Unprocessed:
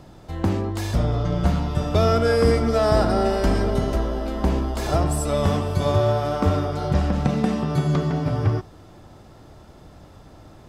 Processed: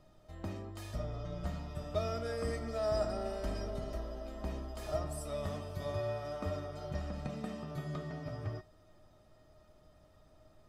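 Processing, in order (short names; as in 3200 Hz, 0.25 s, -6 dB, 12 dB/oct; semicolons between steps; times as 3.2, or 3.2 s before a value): resonator 620 Hz, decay 0.15 s, harmonics all, mix 90%; gain -2.5 dB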